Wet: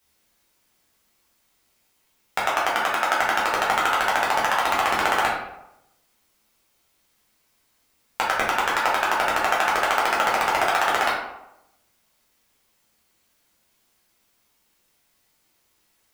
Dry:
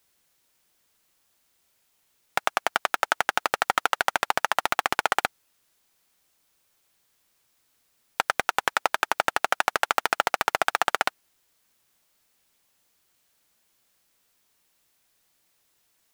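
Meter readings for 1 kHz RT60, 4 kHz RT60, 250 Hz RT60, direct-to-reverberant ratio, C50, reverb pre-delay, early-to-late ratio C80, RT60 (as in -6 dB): 0.85 s, 0.50 s, 0.85 s, -6.0 dB, 2.5 dB, 6 ms, 6.0 dB, 0.90 s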